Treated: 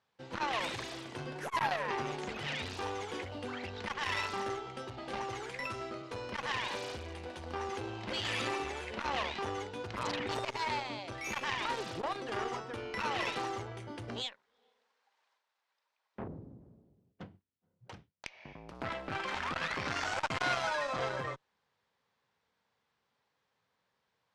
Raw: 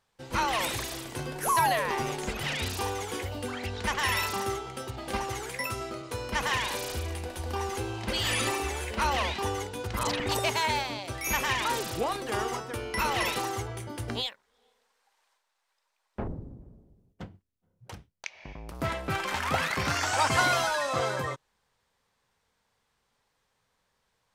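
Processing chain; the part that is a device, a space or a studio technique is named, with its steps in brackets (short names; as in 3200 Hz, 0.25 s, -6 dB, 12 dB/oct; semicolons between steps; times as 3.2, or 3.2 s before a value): valve radio (BPF 110–4700 Hz; tube stage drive 18 dB, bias 0.7; core saturation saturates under 1600 Hz)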